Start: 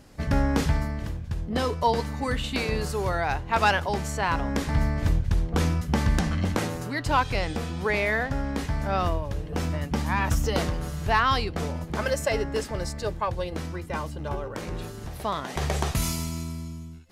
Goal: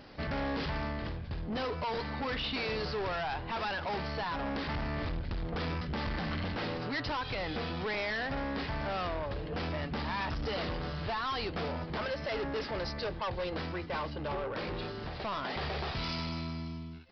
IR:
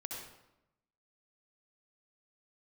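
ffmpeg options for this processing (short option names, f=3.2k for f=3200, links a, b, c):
-af "lowshelf=f=220:g=-10.5,alimiter=limit=-21dB:level=0:latency=1:release=146,aresample=11025,asoftclip=type=tanh:threshold=-36dB,aresample=44100,volume=4.5dB"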